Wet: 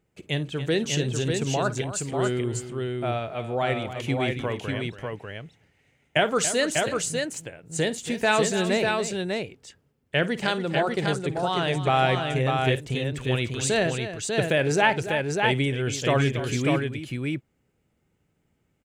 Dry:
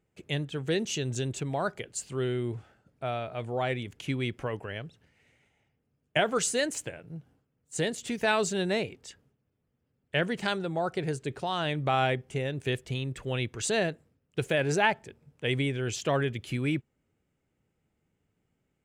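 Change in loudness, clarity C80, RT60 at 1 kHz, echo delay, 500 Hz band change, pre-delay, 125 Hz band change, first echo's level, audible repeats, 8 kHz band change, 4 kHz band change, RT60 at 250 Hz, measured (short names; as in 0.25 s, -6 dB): +5.0 dB, none, none, 52 ms, +5.5 dB, none, +6.0 dB, -16.5 dB, 3, +5.5 dB, +5.5 dB, none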